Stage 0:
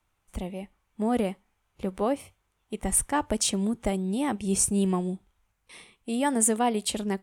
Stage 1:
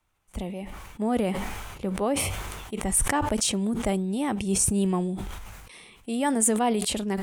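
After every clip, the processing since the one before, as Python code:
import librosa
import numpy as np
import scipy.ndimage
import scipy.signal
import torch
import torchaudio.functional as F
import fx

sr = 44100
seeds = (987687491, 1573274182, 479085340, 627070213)

y = fx.sustainer(x, sr, db_per_s=32.0)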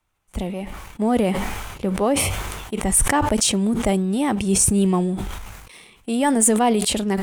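y = fx.leveller(x, sr, passes=1)
y = y * librosa.db_to_amplitude(2.5)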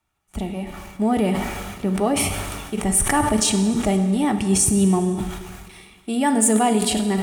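y = fx.notch_comb(x, sr, f0_hz=520.0)
y = fx.rev_plate(y, sr, seeds[0], rt60_s=1.7, hf_ratio=0.9, predelay_ms=0, drr_db=7.5)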